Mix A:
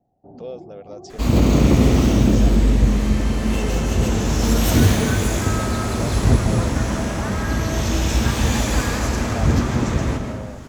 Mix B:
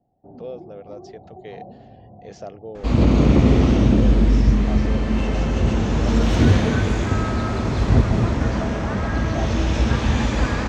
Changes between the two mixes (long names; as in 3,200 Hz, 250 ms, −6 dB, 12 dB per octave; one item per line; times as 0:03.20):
second sound: entry +1.65 s
master: add high-frequency loss of the air 150 metres